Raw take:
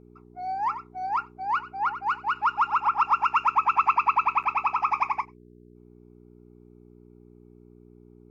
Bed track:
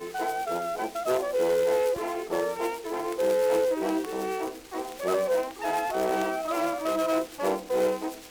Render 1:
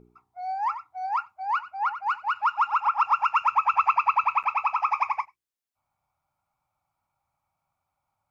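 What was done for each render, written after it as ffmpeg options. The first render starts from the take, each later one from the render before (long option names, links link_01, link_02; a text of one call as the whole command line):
ffmpeg -i in.wav -af "bandreject=frequency=60:width_type=h:width=4,bandreject=frequency=120:width_type=h:width=4,bandreject=frequency=180:width_type=h:width=4,bandreject=frequency=240:width_type=h:width=4,bandreject=frequency=300:width_type=h:width=4,bandreject=frequency=360:width_type=h:width=4,bandreject=frequency=420:width_type=h:width=4" out.wav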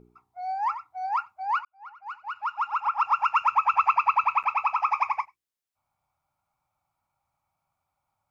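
ffmpeg -i in.wav -filter_complex "[0:a]asplit=2[link_01][link_02];[link_01]atrim=end=1.65,asetpts=PTS-STARTPTS,afade=type=out:start_time=1.646:duration=0.004:curve=hsin[link_03];[link_02]atrim=start=1.65,asetpts=PTS-STARTPTS,afade=type=in:duration=1.67[link_04];[link_03][link_04]concat=n=2:v=0:a=1" out.wav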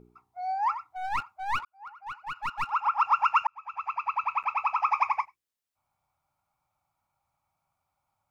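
ffmpeg -i in.wav -filter_complex "[0:a]asettb=1/sr,asplit=3[link_01][link_02][link_03];[link_01]atrim=end=0.874[link_04];[link_02]atrim=start=0.87:end=2.7,asetpts=PTS-STARTPTS,afade=type=in:duration=0.004:curve=qsin,afade=type=out:start_time=1.826:duration=0.004:curve=qsin,aeval=exprs='clip(val(0),-1,0.0141)':channel_layout=same[link_05];[link_03]atrim=start=2.696[link_06];[link_04][link_05]acrossfade=duration=0.004:curve1=hsin:curve2=qsin[link_07];[link_07][link_06]acrossfade=duration=0.004:curve1=qsin:curve2=hsin,asplit=2[link_08][link_09];[link_08]atrim=end=3.47,asetpts=PTS-STARTPTS,afade=type=out:start_time=3.466:duration=0.004:curve=hsin[link_10];[link_09]atrim=start=3.47,asetpts=PTS-STARTPTS,afade=type=in:duration=1.55[link_11];[link_10][link_11]concat=n=2:v=0:a=1" out.wav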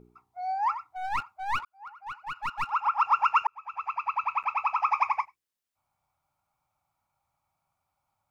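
ffmpeg -i in.wav -filter_complex "[0:a]asettb=1/sr,asplit=3[link_01][link_02][link_03];[link_01]atrim=end=3.064[link_04];[link_02]atrim=start=3.06:end=3.86,asetpts=PTS-STARTPTS,afade=type=in:duration=0.004:curve=qsin,afade=type=out:start_time=0.796:duration=0.004:curve=qsin,equalizer=frequency=430:width_type=o:width=0.32:gain=13[link_05];[link_03]atrim=start=3.856[link_06];[link_04][link_05]acrossfade=duration=0.004:curve1=hsin:curve2=qsin[link_07];[link_07][link_06]acrossfade=duration=0.004:curve1=qsin:curve2=hsin" out.wav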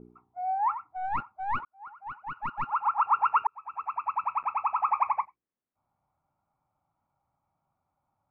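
ffmpeg -i in.wav -af "lowpass=1400,equalizer=frequency=250:width=0.74:gain=8" out.wav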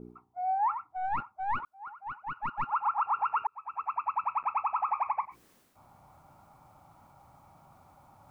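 ffmpeg -i in.wav -af "alimiter=limit=-21dB:level=0:latency=1:release=65,areverse,acompressor=mode=upward:threshold=-39dB:ratio=2.5,areverse" out.wav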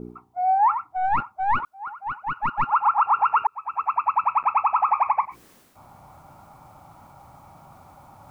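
ffmpeg -i in.wav -af "volume=9.5dB" out.wav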